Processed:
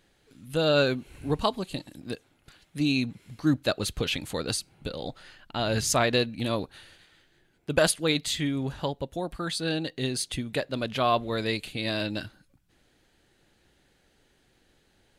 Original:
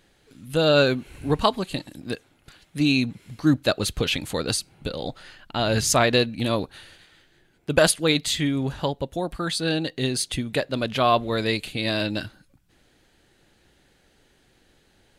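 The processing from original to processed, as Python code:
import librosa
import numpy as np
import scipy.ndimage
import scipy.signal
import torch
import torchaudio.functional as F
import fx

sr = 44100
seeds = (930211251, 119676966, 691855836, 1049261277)

y = fx.dynamic_eq(x, sr, hz=1700.0, q=1.1, threshold_db=-41.0, ratio=4.0, max_db=-4, at=(0.95, 2.95), fade=0.02)
y = y * 10.0 ** (-4.5 / 20.0)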